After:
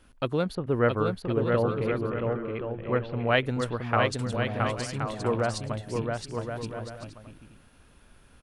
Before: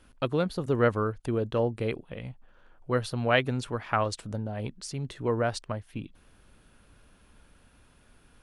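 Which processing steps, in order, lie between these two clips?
0.55–3.28 s: low-pass 2.8 kHz 24 dB/octave; bouncing-ball echo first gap 670 ms, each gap 0.6×, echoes 5

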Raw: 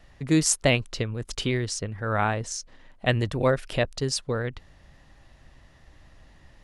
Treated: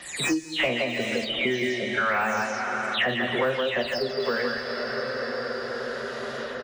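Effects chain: delay that grows with frequency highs early, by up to 254 ms; frequency weighting D; on a send: loudspeakers at several distances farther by 16 m -10 dB, 57 m -5 dB; on the sum: spectral noise reduction 21 dB; in parallel at -6 dB: saturation -19.5 dBFS, distortion -9 dB; on the sum: band-stop 2.7 kHz, Q 28; plate-style reverb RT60 4.7 s, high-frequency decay 0.55×, DRR 9 dB; de-esser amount 100%; bass shelf 110 Hz -10.5 dB; three bands compressed up and down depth 100%

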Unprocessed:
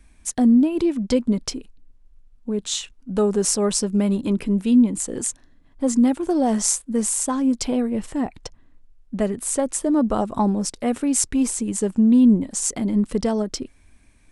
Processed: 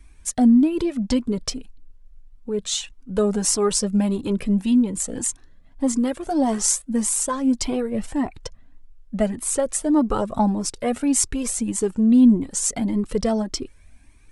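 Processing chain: Shepard-style flanger rising 1.7 Hz; trim +5 dB

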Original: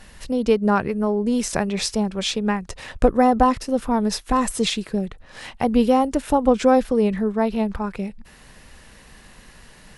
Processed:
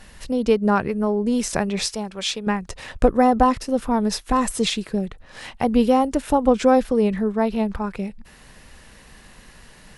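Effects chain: 1.88–2.47 s: bass shelf 460 Hz -10 dB

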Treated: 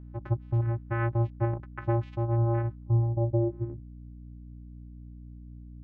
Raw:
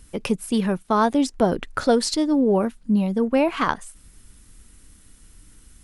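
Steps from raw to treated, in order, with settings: vocoder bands 4, square 116 Hz; low-pass sweep 1.6 kHz -> 180 Hz, 2.67–3.98 s; hum 60 Hz, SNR 15 dB; trim -6.5 dB

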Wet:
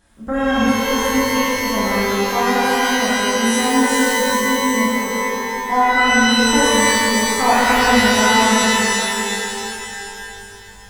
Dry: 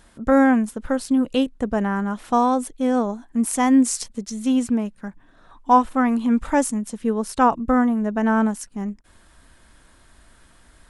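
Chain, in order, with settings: 7.43–8.58 s: resonant low-pass 890 Hz, resonance Q 1.9; pitch-shifted reverb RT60 2.9 s, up +12 st, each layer -2 dB, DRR -9 dB; trim -8.5 dB

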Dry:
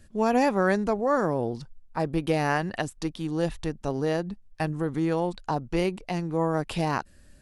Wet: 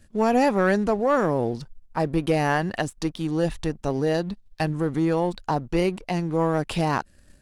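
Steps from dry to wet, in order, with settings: 4.14–4.64 s: peaking EQ 3.9 kHz +8 dB 0.78 oct; waveshaping leveller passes 1

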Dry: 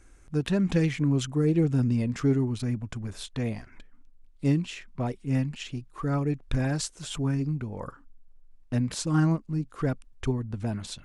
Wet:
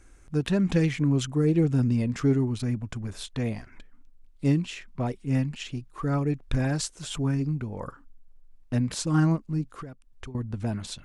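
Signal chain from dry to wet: 9.65–10.35 s: compression 20:1, threshold -38 dBFS, peak gain reduction 17.5 dB; trim +1 dB

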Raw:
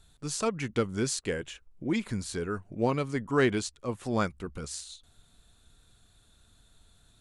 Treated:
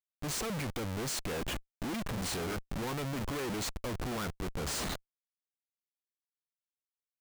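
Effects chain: 2.10–2.54 s: doubling 36 ms -4 dB; Schmitt trigger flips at -42 dBFS; trim -2.5 dB

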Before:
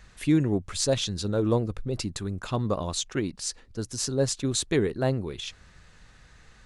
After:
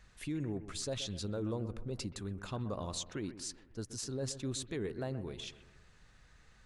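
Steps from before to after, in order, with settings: peak limiter -20.5 dBFS, peak gain reduction 8.5 dB; on a send: bucket-brigade echo 127 ms, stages 2048, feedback 48%, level -13 dB; on the sum: trim -9 dB

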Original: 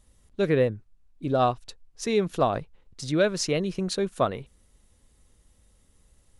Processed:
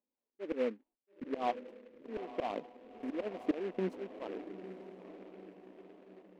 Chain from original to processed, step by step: elliptic band-pass 240–980 Hz, stop band 40 dB; gate -57 dBFS, range -27 dB; in parallel at -1.5 dB: gain riding 0.5 s; on the sum: slow attack 647 ms; flange 0.76 Hz, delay 0.1 ms, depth 4.5 ms, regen +34%; echo that smears into a reverb 919 ms, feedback 51%, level -11 dB; delay time shaken by noise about 1.6 kHz, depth 0.053 ms; trim +5.5 dB

